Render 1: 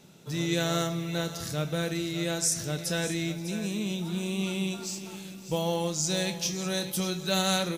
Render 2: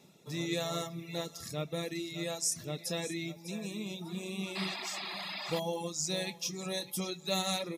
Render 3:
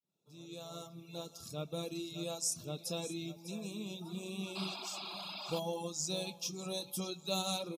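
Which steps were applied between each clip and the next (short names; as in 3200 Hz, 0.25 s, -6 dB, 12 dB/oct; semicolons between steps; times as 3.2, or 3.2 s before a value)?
painted sound noise, 4.55–5.6, 570–5100 Hz -33 dBFS; notch comb 1500 Hz; reverb removal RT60 1.1 s; gain -3.5 dB
opening faded in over 1.83 s; Butterworth band-stop 1900 Hz, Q 1.8; speakerphone echo 0.16 s, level -24 dB; gain -3 dB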